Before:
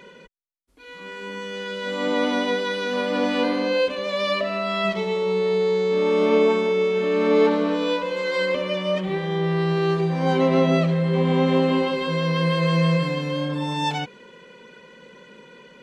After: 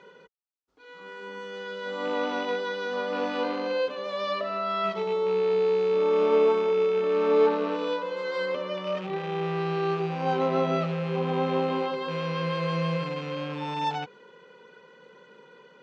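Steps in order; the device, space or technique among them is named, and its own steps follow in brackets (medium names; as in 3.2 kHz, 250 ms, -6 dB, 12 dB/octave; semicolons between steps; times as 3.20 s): car door speaker with a rattle (rattle on loud lows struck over -29 dBFS, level -23 dBFS; cabinet simulation 88–6500 Hz, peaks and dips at 230 Hz -5 dB, 440 Hz +6 dB, 820 Hz +8 dB, 1.3 kHz +9 dB, 2.3 kHz -4 dB); trim -8.5 dB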